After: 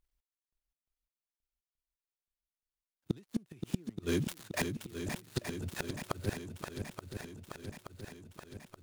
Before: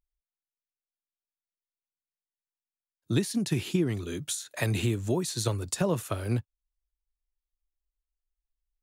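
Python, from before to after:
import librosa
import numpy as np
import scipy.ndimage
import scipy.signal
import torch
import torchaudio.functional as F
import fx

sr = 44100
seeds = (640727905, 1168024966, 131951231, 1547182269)

y = fx.dead_time(x, sr, dead_ms=0.11)
y = fx.gate_flip(y, sr, shuts_db=-23.0, range_db=-33)
y = fx.echo_swing(y, sr, ms=876, ratio=1.5, feedback_pct=63, wet_db=-7.0)
y = F.gain(torch.from_numpy(y), 4.5).numpy()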